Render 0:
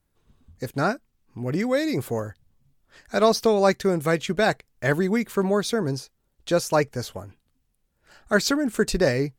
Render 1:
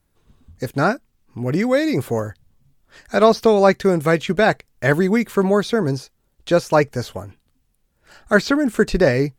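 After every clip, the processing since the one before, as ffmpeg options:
ffmpeg -i in.wav -filter_complex "[0:a]acrossover=split=3700[link_01][link_02];[link_02]acompressor=threshold=-41dB:ratio=4:attack=1:release=60[link_03];[link_01][link_03]amix=inputs=2:normalize=0,volume=5.5dB" out.wav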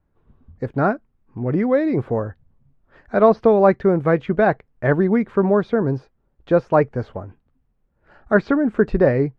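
ffmpeg -i in.wav -af "lowpass=1400" out.wav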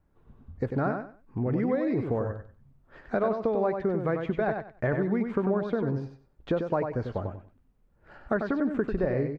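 ffmpeg -i in.wav -filter_complex "[0:a]acompressor=threshold=-25dB:ratio=6,asplit=2[link_01][link_02];[link_02]aecho=0:1:95|190|285:0.501|0.11|0.0243[link_03];[link_01][link_03]amix=inputs=2:normalize=0" out.wav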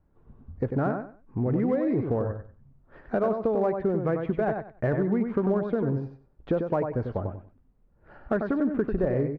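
ffmpeg -i in.wav -filter_complex "[0:a]lowpass=frequency=1200:poles=1,asplit=2[link_01][link_02];[link_02]asoftclip=type=hard:threshold=-23dB,volume=-10dB[link_03];[link_01][link_03]amix=inputs=2:normalize=0" out.wav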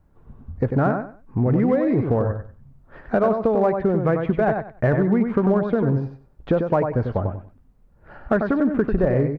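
ffmpeg -i in.wav -af "equalizer=frequency=360:width=1.2:gain=-3.5,volume=8dB" out.wav

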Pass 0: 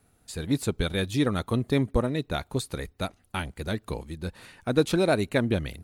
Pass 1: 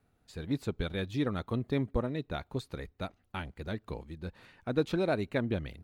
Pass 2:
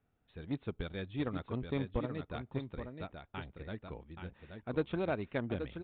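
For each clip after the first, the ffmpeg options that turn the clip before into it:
ffmpeg -i in.wav -af "equalizer=frequency=9800:width_type=o:width=1.3:gain=-14.5,volume=-6.5dB" out.wav
ffmpeg -i in.wav -filter_complex "[0:a]aecho=1:1:827:0.473,asplit=2[link_01][link_02];[link_02]acrusher=bits=3:mix=0:aa=0.5,volume=-11.5dB[link_03];[link_01][link_03]amix=inputs=2:normalize=0,aresample=8000,aresample=44100,volume=-6.5dB" out.wav

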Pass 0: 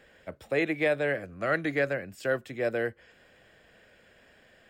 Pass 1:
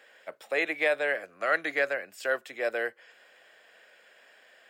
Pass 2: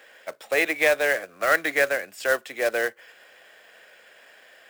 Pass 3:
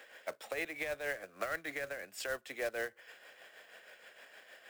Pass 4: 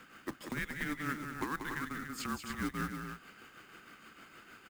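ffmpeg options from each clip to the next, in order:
ffmpeg -i in.wav -af "highpass=610,volume=3dB" out.wav
ffmpeg -i in.wav -af "acrusher=bits=3:mode=log:mix=0:aa=0.000001,volume=5.5dB" out.wav
ffmpeg -i in.wav -filter_complex "[0:a]acrossover=split=150[link_01][link_02];[link_02]acompressor=threshold=-31dB:ratio=5[link_03];[link_01][link_03]amix=inputs=2:normalize=0,tremolo=f=6.4:d=0.51,volume=-2.5dB" out.wav
ffmpeg -i in.wav -af "afreqshift=-300,aecho=1:1:186.6|288.6:0.447|0.398" out.wav

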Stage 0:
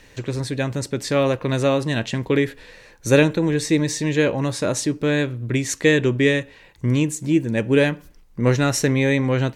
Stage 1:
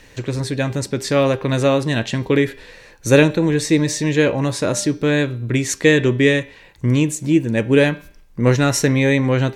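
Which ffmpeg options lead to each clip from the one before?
ffmpeg -i in.wav -af "bandreject=frequency=199.1:width_type=h:width=4,bandreject=frequency=398.2:width_type=h:width=4,bandreject=frequency=597.3:width_type=h:width=4,bandreject=frequency=796.4:width_type=h:width=4,bandreject=frequency=995.5:width_type=h:width=4,bandreject=frequency=1194.6:width_type=h:width=4,bandreject=frequency=1393.7:width_type=h:width=4,bandreject=frequency=1592.8:width_type=h:width=4,bandreject=frequency=1791.9:width_type=h:width=4,bandreject=frequency=1991:width_type=h:width=4,bandreject=frequency=2190.1:width_type=h:width=4,bandreject=frequency=2389.2:width_type=h:width=4,bandreject=frequency=2588.3:width_type=h:width=4,bandreject=frequency=2787.4:width_type=h:width=4,bandreject=frequency=2986.5:width_type=h:width=4,bandreject=frequency=3185.6:width_type=h:width=4,bandreject=frequency=3384.7:width_type=h:width=4,bandreject=frequency=3583.8:width_type=h:width=4,bandreject=frequency=3782.9:width_type=h:width=4,bandreject=frequency=3982:width_type=h:width=4,bandreject=frequency=4181.1:width_type=h:width=4,bandreject=frequency=4380.2:width_type=h:width=4,bandreject=frequency=4579.3:width_type=h:width=4,bandreject=frequency=4778.4:width_type=h:width=4,bandreject=frequency=4977.5:width_type=h:width=4,bandreject=frequency=5176.6:width_type=h:width=4,bandreject=frequency=5375.7:width_type=h:width=4,bandreject=frequency=5574.8:width_type=h:width=4,bandreject=frequency=5773.9:width_type=h:width=4,bandreject=frequency=5973:width_type=h:width=4,volume=3dB" out.wav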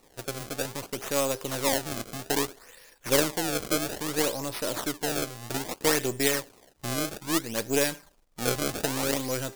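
ffmpeg -i in.wav -af "aeval=exprs='if(lt(val(0),0),0.447*val(0),val(0))':channel_layout=same,acrusher=samples=27:mix=1:aa=0.000001:lfo=1:lforange=43.2:lforate=0.61,bass=frequency=250:gain=-8,treble=frequency=4000:gain=9,volume=-8.5dB" out.wav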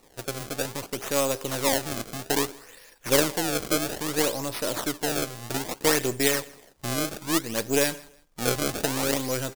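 ffmpeg -i in.wav -af "aecho=1:1:162|324:0.0668|0.018,volume=2dB" out.wav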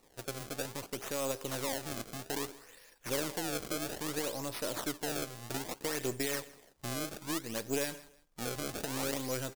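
ffmpeg -i in.wav -af "alimiter=limit=-10.5dB:level=0:latency=1:release=95,volume=-7.5dB" out.wav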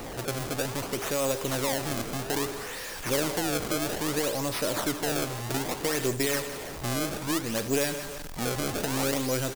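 ffmpeg -i in.wav -af "aeval=exprs='val(0)+0.5*0.0126*sgn(val(0))':channel_layout=same,aecho=1:1:157:0.126,volume=5.5dB" out.wav

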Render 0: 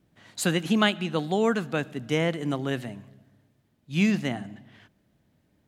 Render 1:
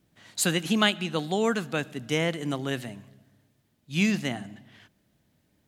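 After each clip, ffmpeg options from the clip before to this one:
ffmpeg -i in.wav -af "highshelf=frequency=2700:gain=7.5,volume=-2dB" out.wav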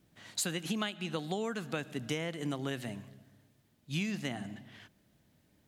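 ffmpeg -i in.wav -af "acompressor=threshold=-31dB:ratio=10" out.wav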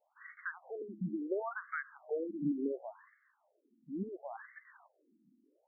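ffmpeg -i in.wav -af "afftfilt=real='re*between(b*sr/1024,240*pow(1600/240,0.5+0.5*sin(2*PI*0.71*pts/sr))/1.41,240*pow(1600/240,0.5+0.5*sin(2*PI*0.71*pts/sr))*1.41)':imag='im*between(b*sr/1024,240*pow(1600/240,0.5+0.5*sin(2*PI*0.71*pts/sr))/1.41,240*pow(1600/240,0.5+0.5*sin(2*PI*0.71*pts/sr))*1.41)':win_size=1024:overlap=0.75,volume=4.5dB" out.wav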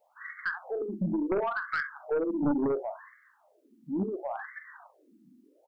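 ffmpeg -i in.wav -af "aecho=1:1:41|65:0.299|0.188,aeval=exprs='0.0668*(cos(1*acos(clip(val(0)/0.0668,-1,1)))-cos(1*PI/2))+0.0335*(cos(2*acos(clip(val(0)/0.0668,-1,1)))-cos(2*PI/2))+0.00841*(cos(4*acos(clip(val(0)/0.0668,-1,1)))-cos(4*PI/2))+0.0133*(cos(5*acos(clip(val(0)/0.0668,-1,1)))-cos(5*PI/2))+0.000841*(cos(6*acos(clip(val(0)/0.0668,-1,1)))-cos(6*PI/2))':channel_layout=same,volume=4dB" out.wav

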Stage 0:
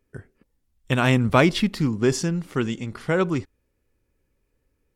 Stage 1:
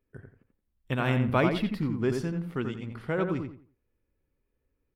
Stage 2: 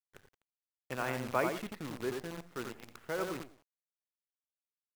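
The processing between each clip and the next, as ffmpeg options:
ffmpeg -i in.wav -filter_complex "[0:a]equalizer=frequency=6800:width_type=o:width=1.1:gain=-13.5,asplit=2[link_01][link_02];[link_02]adelay=87,lowpass=frequency=2300:poles=1,volume=-5dB,asplit=2[link_03][link_04];[link_04]adelay=87,lowpass=frequency=2300:poles=1,volume=0.28,asplit=2[link_05][link_06];[link_06]adelay=87,lowpass=frequency=2300:poles=1,volume=0.28,asplit=2[link_07][link_08];[link_08]adelay=87,lowpass=frequency=2300:poles=1,volume=0.28[link_09];[link_01][link_03][link_05][link_07][link_09]amix=inputs=5:normalize=0,volume=-7.5dB" out.wav
ffmpeg -i in.wav -filter_complex "[0:a]acrossover=split=360 2700:gain=0.224 1 0.0708[link_01][link_02][link_03];[link_01][link_02][link_03]amix=inputs=3:normalize=0,acrusher=bits=7:dc=4:mix=0:aa=0.000001,volume=-4.5dB" out.wav

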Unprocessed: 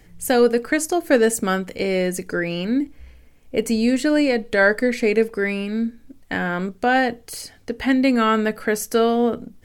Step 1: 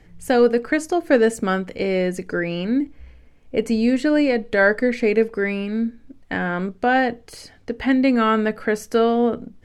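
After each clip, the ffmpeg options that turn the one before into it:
ffmpeg -i in.wav -af "aemphasis=mode=reproduction:type=50fm" out.wav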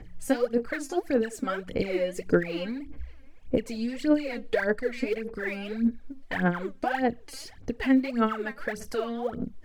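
ffmpeg -i in.wav -af "acompressor=threshold=-23dB:ratio=6,aphaser=in_gain=1:out_gain=1:delay=3.8:decay=0.79:speed=1.7:type=sinusoidal,volume=-6dB" out.wav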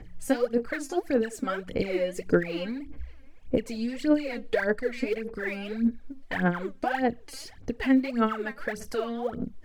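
ffmpeg -i in.wav -af anull out.wav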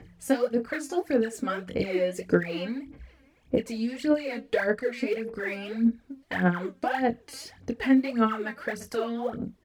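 ffmpeg -i in.wav -filter_complex "[0:a]highpass=75,asplit=2[link_01][link_02];[link_02]adelay=22,volume=-9dB[link_03];[link_01][link_03]amix=inputs=2:normalize=0" out.wav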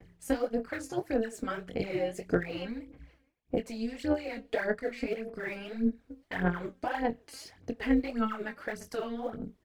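ffmpeg -i in.wav -af "agate=range=-33dB:threshold=-51dB:ratio=3:detection=peak,tremolo=f=220:d=0.621,volume=-2.5dB" out.wav

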